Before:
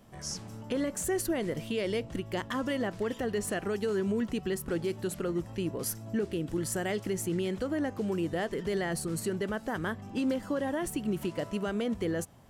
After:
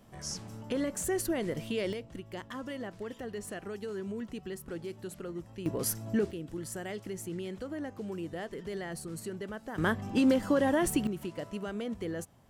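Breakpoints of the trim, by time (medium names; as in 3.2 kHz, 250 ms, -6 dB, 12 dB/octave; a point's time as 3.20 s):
-1 dB
from 1.93 s -8 dB
from 5.66 s +2 dB
from 6.31 s -7 dB
from 9.78 s +5 dB
from 11.07 s -5 dB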